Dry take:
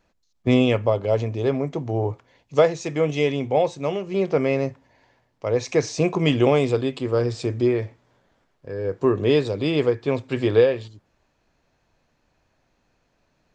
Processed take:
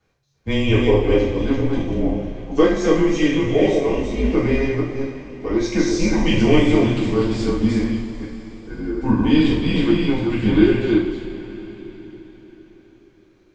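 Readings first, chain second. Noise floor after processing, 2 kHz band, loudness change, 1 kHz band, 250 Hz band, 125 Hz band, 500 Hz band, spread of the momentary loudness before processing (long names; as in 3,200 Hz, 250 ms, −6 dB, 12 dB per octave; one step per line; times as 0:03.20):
−55 dBFS, +4.5 dB, +3.5 dB, +0.5 dB, +8.0 dB, +3.0 dB, +0.5 dB, 9 LU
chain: delay that plays each chunk backwards 229 ms, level −3 dB
coupled-rooms reverb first 0.53 s, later 4.7 s, from −17 dB, DRR −6.5 dB
frequency shifter −140 Hz
level −5 dB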